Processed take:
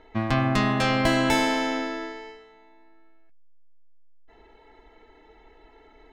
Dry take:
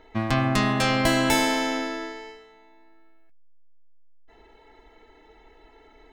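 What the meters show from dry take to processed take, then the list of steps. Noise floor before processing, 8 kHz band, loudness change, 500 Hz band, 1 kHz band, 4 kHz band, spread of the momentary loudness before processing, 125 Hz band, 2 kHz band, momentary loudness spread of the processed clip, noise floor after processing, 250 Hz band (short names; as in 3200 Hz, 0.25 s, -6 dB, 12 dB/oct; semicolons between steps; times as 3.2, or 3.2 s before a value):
-55 dBFS, -5.5 dB, -0.5 dB, 0.0 dB, 0.0 dB, -2.0 dB, 13 LU, 0.0 dB, -0.5 dB, 13 LU, -55 dBFS, 0.0 dB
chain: high shelf 7200 Hz -11.5 dB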